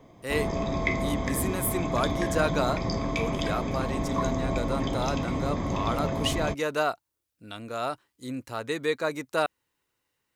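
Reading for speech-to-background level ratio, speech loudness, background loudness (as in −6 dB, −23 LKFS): −1.5 dB, −31.5 LKFS, −30.0 LKFS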